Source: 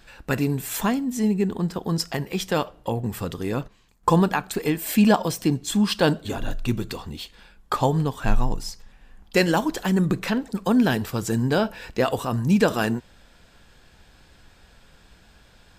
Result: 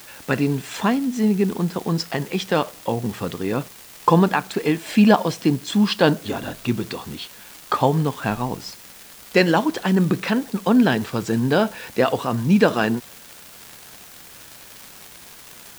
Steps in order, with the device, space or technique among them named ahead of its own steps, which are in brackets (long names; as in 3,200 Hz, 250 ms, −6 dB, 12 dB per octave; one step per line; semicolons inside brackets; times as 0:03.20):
78 rpm shellac record (band-pass filter 130–4,800 Hz; surface crackle 190 per second −32 dBFS; white noise bed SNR 23 dB)
level +3.5 dB